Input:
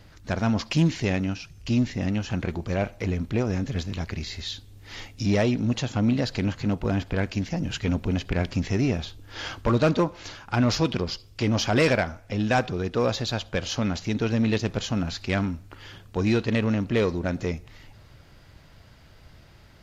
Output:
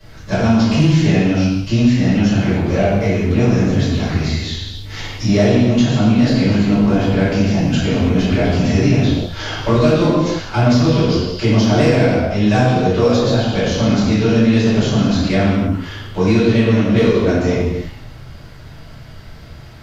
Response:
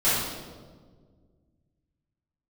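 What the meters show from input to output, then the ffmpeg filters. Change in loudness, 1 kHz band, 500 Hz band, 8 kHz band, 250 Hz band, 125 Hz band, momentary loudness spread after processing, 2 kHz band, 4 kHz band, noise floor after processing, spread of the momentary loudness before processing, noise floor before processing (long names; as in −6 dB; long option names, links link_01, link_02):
+11.0 dB, +9.0 dB, +11.0 dB, +7.0 dB, +12.0 dB, +11.5 dB, 7 LU, +7.5 dB, +8.5 dB, −36 dBFS, 10 LU, −52 dBFS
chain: -filter_complex "[1:a]atrim=start_sample=2205,afade=type=out:start_time=0.39:duration=0.01,atrim=end_sample=17640[link_01];[0:a][link_01]afir=irnorm=-1:irlink=0,acrossover=split=88|980|2200[link_02][link_03][link_04][link_05];[link_02]acompressor=threshold=-26dB:ratio=4[link_06];[link_03]acompressor=threshold=-8dB:ratio=4[link_07];[link_04]acompressor=threshold=-30dB:ratio=4[link_08];[link_05]acompressor=threshold=-25dB:ratio=4[link_09];[link_06][link_07][link_08][link_09]amix=inputs=4:normalize=0,volume=-2.5dB"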